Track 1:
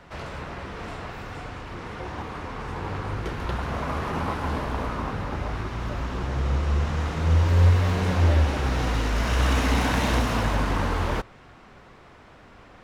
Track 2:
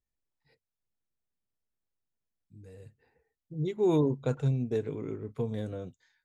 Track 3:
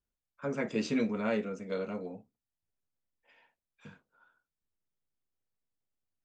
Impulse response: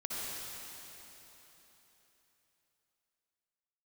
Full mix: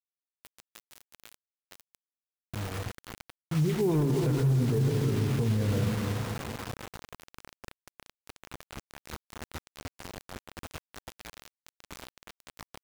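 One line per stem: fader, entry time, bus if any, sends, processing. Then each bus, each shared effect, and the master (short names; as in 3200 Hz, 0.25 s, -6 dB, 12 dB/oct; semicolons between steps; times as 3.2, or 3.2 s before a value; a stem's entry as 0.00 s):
-17.0 dB, 2.15 s, send -6 dB, echo send -4.5 dB, elliptic low-pass 8300 Hz, stop band 40 dB; limiter -18.5 dBFS, peak gain reduction 8.5 dB; compressor 5:1, threshold -28 dBFS, peak gain reduction 6.5 dB
0.0 dB, 0.00 s, send -6 dB, echo send -10 dB, tone controls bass +12 dB, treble -11 dB; LFO low-pass saw down 9.2 Hz 970–3500 Hz; overloaded stage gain 14.5 dB
-12.5 dB, 0.00 s, send -7 dB, echo send -6 dB, spectral contrast lowered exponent 0.19; compressor 10:1, threshold -34 dBFS, peak gain reduction 9.5 dB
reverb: on, RT60 3.7 s, pre-delay 52 ms
echo: feedback echo 0.337 s, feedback 26%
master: requantised 6-bit, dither none; limiter -19.5 dBFS, peak gain reduction 11.5 dB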